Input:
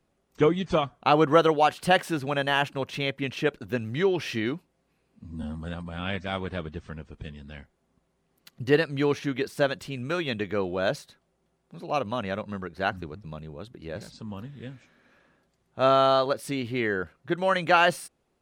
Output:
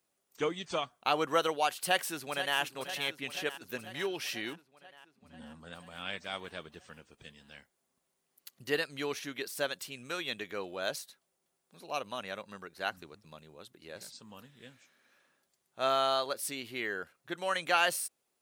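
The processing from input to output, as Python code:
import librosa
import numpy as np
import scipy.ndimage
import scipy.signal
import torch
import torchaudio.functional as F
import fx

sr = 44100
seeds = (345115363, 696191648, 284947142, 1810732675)

y = fx.echo_throw(x, sr, start_s=1.79, length_s=0.8, ms=490, feedback_pct=70, wet_db=-12.0)
y = fx.lowpass(y, sr, hz=3000.0, slope=6, at=(4.53, 5.73))
y = fx.riaa(y, sr, side='recording')
y = F.gain(torch.from_numpy(y), -8.0).numpy()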